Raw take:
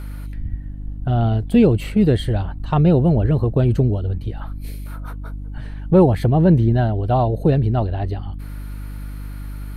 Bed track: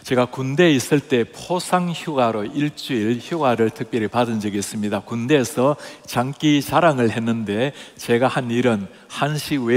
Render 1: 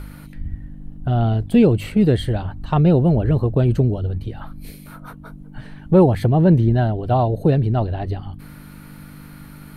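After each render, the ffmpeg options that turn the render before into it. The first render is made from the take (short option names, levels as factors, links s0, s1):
-af "bandreject=f=50:t=h:w=4,bandreject=f=100:t=h:w=4"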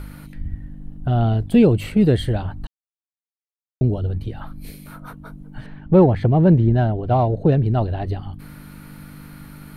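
-filter_complex "[0:a]asettb=1/sr,asplit=3[s0][s1][s2];[s0]atrim=end=5.664[s3];[s1]atrim=start=5.66:end=7.66,asetpts=PTS-STARTPTS,afade=t=in:d=0.004:c=qsin,afade=t=out:st=1.996:d=0.004:c=qsin,adynamicsmooth=sensitivity=1:basefreq=3400[s4];[s2]atrim=start=7.656[s5];[s3][s4]acrossfade=d=0.004:c1=hsin:c2=qsin[s6];[s6][s5]acrossfade=d=0.004:c1=qsin:c2=hsin,asplit=3[s7][s8][s9];[s7]atrim=end=2.67,asetpts=PTS-STARTPTS,afade=t=out:st=2.666:d=0.004:c=hsin[s10];[s8]atrim=start=2.67:end=3.81,asetpts=PTS-STARTPTS,volume=0[s11];[s9]atrim=start=3.81,asetpts=PTS-STARTPTS,afade=t=in:d=0.004:c=hsin[s12];[s10][s11][s12]concat=n=3:v=0:a=1"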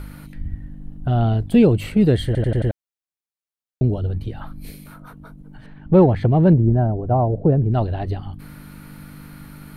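-filter_complex "[0:a]asettb=1/sr,asplit=3[s0][s1][s2];[s0]atrim=end=4.824[s3];[s1]atrim=start=4.82:end=5.85,asetpts=PTS-STARTPTS,afade=t=in:d=0.004:c=qsin,afade=t=out:st=1.026:d=0.004:c=qsin,acompressor=threshold=0.0158:ratio=6:attack=3.2:release=140:knee=1:detection=peak[s4];[s2]atrim=start=5.846[s5];[s3][s4]acrossfade=d=0.004:c1=hsin:c2=qsin[s6];[s6][s5]acrossfade=d=0.004:c1=qsin:c2=hsin,asettb=1/sr,asplit=3[s7][s8][s9];[s7]atrim=end=6.534[s10];[s8]atrim=start=6.53:end=7.72,asetpts=PTS-STARTPTS,afade=t=in:d=0.004:c=qsin,afade=t=out:st=1.186:d=0.004:c=qsin,lowpass=1000[s11];[s9]atrim=start=7.716[s12];[s10][s11]acrossfade=d=0.004:c1=hsin:c2=qsin[s13];[s13][s12]acrossfade=d=0.004:c1=qsin:c2=hsin,asplit=6[s14][s15][s16][s17][s18][s19];[s14]atrim=end=2.352[s20];[s15]atrim=start=2.258:end=2.352[s21];[s16]atrim=start=2.258:end=2.352[s22];[s17]atrim=start=2.258:end=2.352[s23];[s18]atrim=start=2.258:end=2.352[s24];[s19]atrim=start=2.708[s25];[s20][s21]acrossfade=d=0.004:c1=hsin:c2=hsin[s26];[s26][s22]acrossfade=d=0.004:c1=hsin:c2=hsin[s27];[s27][s23]acrossfade=d=0.004:c1=hsin:c2=hsin[s28];[s28][s24]acrossfade=d=0.004:c1=hsin:c2=hsin[s29];[s29][s25]acrossfade=d=0.004:c1=hsin:c2=hsin"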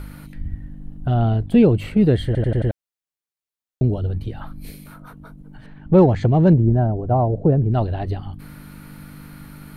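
-filter_complex "[0:a]asettb=1/sr,asplit=3[s0][s1][s2];[s0]atrim=end=1.144[s3];[s1]atrim=start=1.14:end=2.69,asetpts=PTS-STARTPTS,afade=t=in:d=0.004:c=qsin,afade=t=out:st=1.546:d=0.004:c=qsin,highshelf=f=4500:g=-8[s4];[s2]atrim=start=2.686[s5];[s3][s4]acrossfade=d=0.004:c1=hsin:c2=qsin[s6];[s6][s5]acrossfade=d=0.004:c1=qsin:c2=hsin,asettb=1/sr,asplit=3[s7][s8][s9];[s7]atrim=end=5.984[s10];[s8]atrim=start=5.98:end=7.47,asetpts=PTS-STARTPTS,afade=t=in:d=0.004:c=qsin,afade=t=out:st=1.486:d=0.004:c=qsin,lowpass=f=6900:t=q:w=5.7[s11];[s9]atrim=start=7.466[s12];[s10][s11]acrossfade=d=0.004:c1=hsin:c2=qsin[s13];[s13][s12]acrossfade=d=0.004:c1=qsin:c2=hsin"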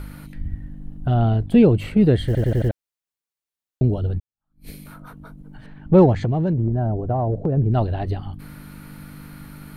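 -filter_complex "[0:a]asettb=1/sr,asplit=3[s0][s1][s2];[s0]atrim=end=2.264[s3];[s1]atrim=start=2.26:end=2.69,asetpts=PTS-STARTPTS,afade=t=in:d=0.004:c=qsin,afade=t=out:st=0.426:d=0.004:c=qsin,acrusher=bits=9:mode=log:mix=0:aa=0.000001[s4];[s2]atrim=start=2.686[s5];[s3][s4]acrossfade=d=0.004:c1=hsin:c2=qsin[s6];[s6][s5]acrossfade=d=0.004:c1=qsin:c2=hsin,asettb=1/sr,asplit=3[s7][s8][s9];[s7]atrim=end=6.124[s10];[s8]atrim=start=6.12:end=7.57,asetpts=PTS-STARTPTS,afade=t=in:d=0.004:c=qsin,afade=t=out:st=1.446:d=0.004:c=qsin,acompressor=threshold=0.141:ratio=6:attack=3.2:release=140:knee=1:detection=peak[s11];[s9]atrim=start=7.566[s12];[s10][s11]acrossfade=d=0.004:c1=hsin:c2=qsin[s13];[s13][s12]acrossfade=d=0.004:c1=qsin:c2=hsin,asplit=2[s14][s15];[s14]atrim=end=4.2,asetpts=PTS-STARTPTS,afade=t=out:st=4.196:d=0.004:c=hsin[s16];[s15]atrim=start=4.2,asetpts=PTS-STARTPTS,afade=t=in:d=0.49:c=exp[s17];[s16][s17]concat=n=2:v=0:a=1"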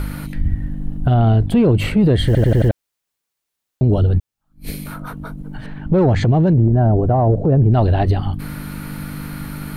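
-filter_complex "[0:a]asplit=2[s0][s1];[s1]acontrast=74,volume=1.12[s2];[s0][s2]amix=inputs=2:normalize=0,alimiter=limit=0.422:level=0:latency=1:release=61"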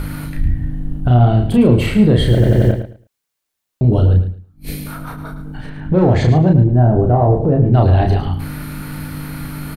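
-filter_complex "[0:a]asplit=2[s0][s1];[s1]adelay=33,volume=0.668[s2];[s0][s2]amix=inputs=2:normalize=0,asplit=2[s3][s4];[s4]aecho=0:1:109|218|327:0.316|0.0632|0.0126[s5];[s3][s5]amix=inputs=2:normalize=0"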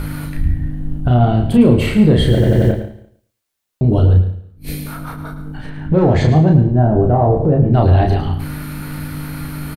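-filter_complex "[0:a]asplit=2[s0][s1];[s1]adelay=13,volume=0.282[s2];[s0][s2]amix=inputs=2:normalize=0,aecho=1:1:171|342:0.133|0.028"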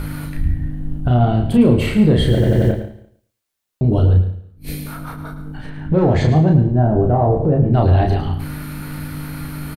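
-af "volume=0.794"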